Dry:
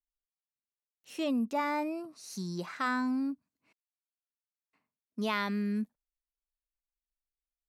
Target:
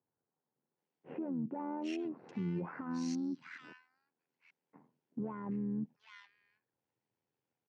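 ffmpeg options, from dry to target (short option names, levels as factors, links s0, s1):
-filter_complex "[0:a]tiltshelf=f=1200:g=9,asplit=2[s0][s1];[s1]asoftclip=type=tanh:threshold=0.0473,volume=0.562[s2];[s0][s2]amix=inputs=2:normalize=0,asplit=2[s3][s4];[s4]highpass=f=720:p=1,volume=6.31,asoftclip=type=tanh:threshold=0.178[s5];[s3][s5]amix=inputs=2:normalize=0,lowpass=f=1100:p=1,volume=0.501,acompressor=threshold=0.02:ratio=10,tremolo=f=82:d=0.621,alimiter=level_in=5.62:limit=0.0631:level=0:latency=1:release=62,volume=0.178,highpass=f=120:w=0.5412,highpass=f=120:w=1.3066,equalizer=f=150:t=q:w=4:g=6,equalizer=f=640:t=q:w=4:g=-9,equalizer=f=1200:t=q:w=4:g=-9,equalizer=f=3900:t=q:w=4:g=-5,lowpass=f=7000:w=0.5412,lowpass=f=7000:w=1.3066,acrossover=split=1600[s6][s7];[s7]adelay=780[s8];[s6][s8]amix=inputs=2:normalize=0,volume=2.66"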